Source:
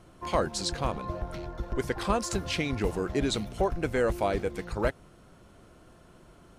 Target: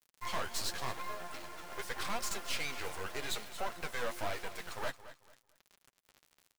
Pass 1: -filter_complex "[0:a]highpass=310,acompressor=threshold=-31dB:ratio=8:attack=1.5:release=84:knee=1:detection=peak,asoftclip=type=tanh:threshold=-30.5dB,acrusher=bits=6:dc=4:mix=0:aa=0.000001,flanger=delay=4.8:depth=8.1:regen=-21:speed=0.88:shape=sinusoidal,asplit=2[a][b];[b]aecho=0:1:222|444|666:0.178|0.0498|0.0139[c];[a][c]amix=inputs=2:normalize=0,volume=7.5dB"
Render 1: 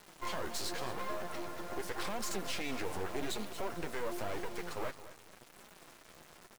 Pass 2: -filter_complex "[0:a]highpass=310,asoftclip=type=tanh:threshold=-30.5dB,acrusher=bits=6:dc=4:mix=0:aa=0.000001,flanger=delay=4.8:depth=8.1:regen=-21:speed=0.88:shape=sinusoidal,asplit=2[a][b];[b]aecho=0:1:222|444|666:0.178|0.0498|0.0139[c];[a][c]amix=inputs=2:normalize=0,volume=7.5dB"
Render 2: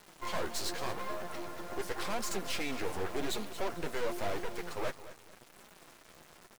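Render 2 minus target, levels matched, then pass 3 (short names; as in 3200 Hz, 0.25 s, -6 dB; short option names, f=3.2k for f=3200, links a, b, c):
250 Hz band +7.5 dB
-filter_complex "[0:a]highpass=850,asoftclip=type=tanh:threshold=-30.5dB,acrusher=bits=6:dc=4:mix=0:aa=0.000001,flanger=delay=4.8:depth=8.1:regen=-21:speed=0.88:shape=sinusoidal,asplit=2[a][b];[b]aecho=0:1:222|444|666:0.178|0.0498|0.0139[c];[a][c]amix=inputs=2:normalize=0,volume=7.5dB"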